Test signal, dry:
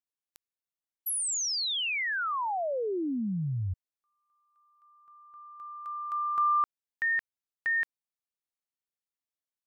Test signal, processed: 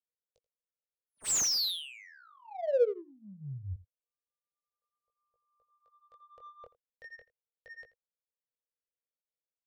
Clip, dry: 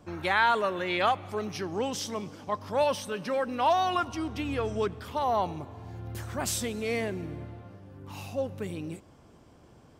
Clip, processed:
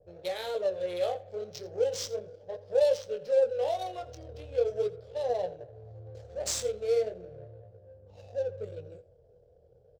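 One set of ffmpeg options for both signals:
-filter_complex "[0:a]flanger=delay=16.5:depth=7.9:speed=0.37,firequalizer=gain_entry='entry(100,0);entry(270,-23);entry(480,14);entry(1000,-21);entry(4100,8);entry(7600,12);entry(11000,-16)':delay=0.05:min_phase=1,adynamicsmooth=sensitivity=7.5:basefreq=1k,asplit=2[a][b];[b]aecho=0:1:84:0.119[c];[a][c]amix=inputs=2:normalize=0,adynamicequalizer=threshold=0.00794:dfrequency=2400:dqfactor=0.7:tfrequency=2400:tqfactor=0.7:attack=5:release=100:ratio=0.375:range=2.5:mode=cutabove:tftype=highshelf,volume=-2.5dB"

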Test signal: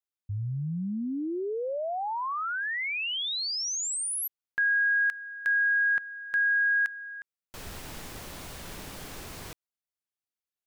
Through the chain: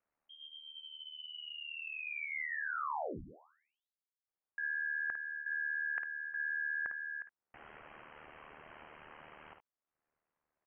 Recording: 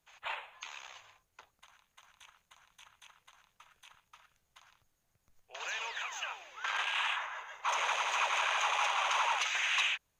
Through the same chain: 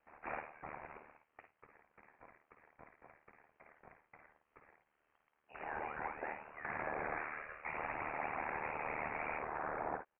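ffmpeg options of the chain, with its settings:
-filter_complex "[0:a]aderivative,areverse,acompressor=threshold=-49dB:ratio=8:attack=20:release=58:knee=6:detection=rms,areverse,highshelf=f=2.3k:g=6.5,acompressor=mode=upward:threshold=-53dB:ratio=2.5:attack=0.25:release=354:knee=2.83:detection=peak,asplit=2[a][b];[b]aecho=0:1:53|71:0.422|0.178[c];[a][c]amix=inputs=2:normalize=0,lowpass=f=2.8k:t=q:w=0.5098,lowpass=f=2.8k:t=q:w=0.6013,lowpass=f=2.8k:t=q:w=0.9,lowpass=f=2.8k:t=q:w=2.563,afreqshift=-3300,aeval=exprs='val(0)*sin(2*PI*38*n/s)':c=same,volume=11dB"

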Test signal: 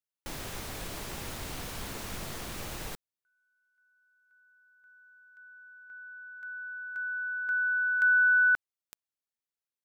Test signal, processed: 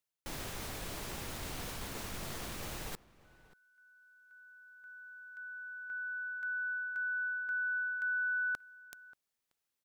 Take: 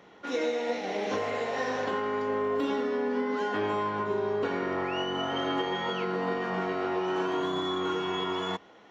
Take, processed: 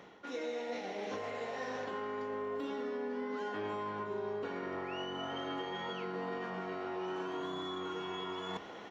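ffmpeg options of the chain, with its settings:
-filter_complex "[0:a]areverse,acompressor=threshold=-41dB:ratio=6:attack=0.4:release=757:detection=peak,areverse,asplit=2[a][b];[b]adelay=583.1,volume=-20dB,highshelf=f=4k:g=-13.1[c];[a][c]amix=inputs=2:normalize=0,volume=6.5dB"

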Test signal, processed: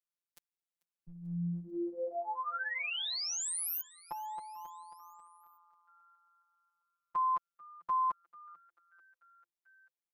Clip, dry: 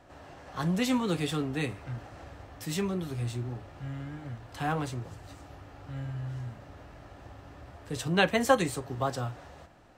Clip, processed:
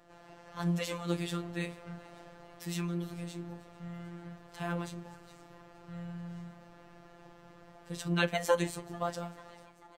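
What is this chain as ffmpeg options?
-filter_complex "[0:a]asplit=5[a][b][c][d][e];[b]adelay=441,afreqshift=120,volume=-23dB[f];[c]adelay=882,afreqshift=240,volume=-27.3dB[g];[d]adelay=1323,afreqshift=360,volume=-31.6dB[h];[e]adelay=1764,afreqshift=480,volume=-35.9dB[i];[a][f][g][h][i]amix=inputs=5:normalize=0,afftfilt=real='hypot(re,im)*cos(PI*b)':imag='0':win_size=1024:overlap=0.75,volume=-1.5dB"

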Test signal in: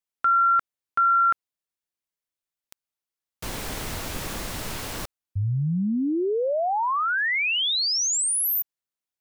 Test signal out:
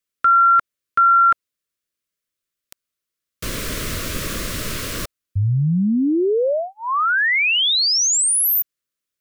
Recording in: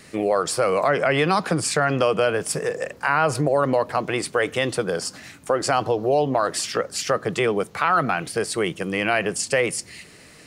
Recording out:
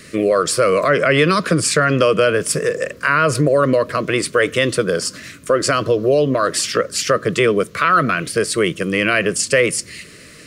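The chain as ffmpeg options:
-af "asuperstop=centerf=820:order=4:qfactor=1.9,volume=6.5dB"

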